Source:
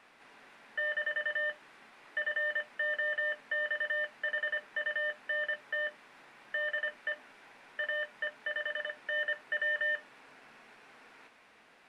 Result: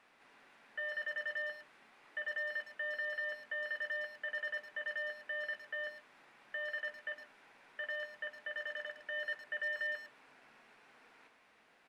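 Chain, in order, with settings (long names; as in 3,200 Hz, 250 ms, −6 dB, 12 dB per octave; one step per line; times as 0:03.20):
far-end echo of a speakerphone 110 ms, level −10 dB
level −6.5 dB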